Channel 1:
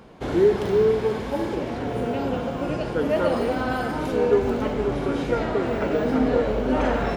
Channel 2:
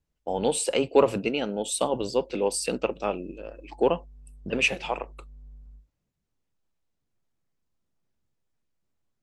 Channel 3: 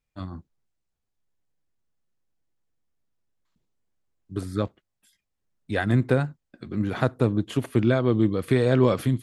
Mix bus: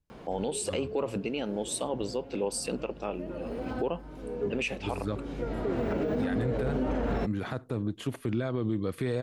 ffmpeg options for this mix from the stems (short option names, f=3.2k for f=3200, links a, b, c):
-filter_complex "[0:a]acrossover=split=480[a][b];[b]acompressor=threshold=-36dB:ratio=2.5[c];[a][c]amix=inputs=2:normalize=0,adelay=100,volume=0.5dB[d];[1:a]lowshelf=f=320:g=5,volume=-4.5dB,asplit=2[e][f];[2:a]adelay=500,volume=-5dB[g];[f]apad=whole_len=320435[h];[d][h]sidechaincompress=threshold=-47dB:ratio=4:attack=10:release=575[i];[i][e]amix=inputs=2:normalize=0,alimiter=limit=-16.5dB:level=0:latency=1:release=279,volume=0dB[j];[g][j]amix=inputs=2:normalize=0,alimiter=limit=-21dB:level=0:latency=1:release=48"